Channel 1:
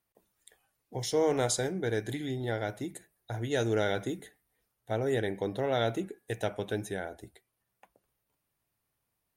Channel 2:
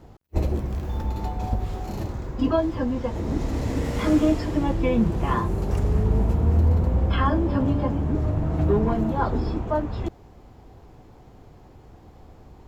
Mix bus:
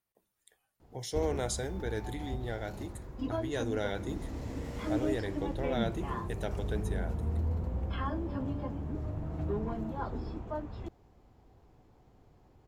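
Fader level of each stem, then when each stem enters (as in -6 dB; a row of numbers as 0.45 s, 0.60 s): -5.5 dB, -13.0 dB; 0.00 s, 0.80 s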